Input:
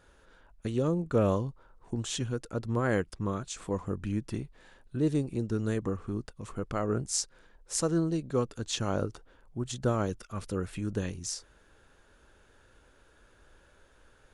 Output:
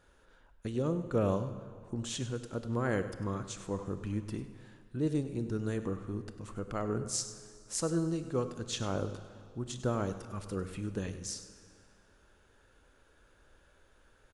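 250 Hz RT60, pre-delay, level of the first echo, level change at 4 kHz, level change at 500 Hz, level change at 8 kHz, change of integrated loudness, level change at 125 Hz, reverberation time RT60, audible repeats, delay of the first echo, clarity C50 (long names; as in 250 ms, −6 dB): 2.3 s, 25 ms, −14.5 dB, −3.5 dB, −3.5 dB, −3.5 dB, −3.5 dB, −3.5 dB, 2.3 s, 1, 99 ms, 10.0 dB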